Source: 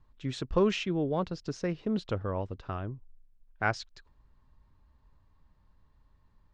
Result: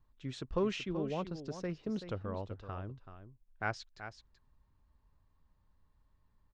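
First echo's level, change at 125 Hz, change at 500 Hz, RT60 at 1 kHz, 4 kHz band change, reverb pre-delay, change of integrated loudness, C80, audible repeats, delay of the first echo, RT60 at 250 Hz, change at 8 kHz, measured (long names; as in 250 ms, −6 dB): −10.5 dB, −6.5 dB, −6.5 dB, no reverb audible, −6.5 dB, no reverb audible, −7.0 dB, no reverb audible, 1, 381 ms, no reverb audible, −6.5 dB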